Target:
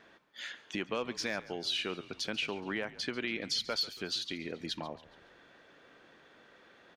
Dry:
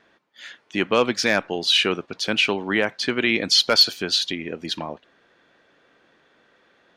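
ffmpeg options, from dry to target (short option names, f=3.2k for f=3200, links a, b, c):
-filter_complex "[0:a]acompressor=threshold=-40dB:ratio=2.5,asplit=5[a][b][c][d][e];[b]adelay=140,afreqshift=-60,volume=-18dB[f];[c]adelay=280,afreqshift=-120,volume=-24dB[g];[d]adelay=420,afreqshift=-180,volume=-30dB[h];[e]adelay=560,afreqshift=-240,volume=-36.1dB[i];[a][f][g][h][i]amix=inputs=5:normalize=0"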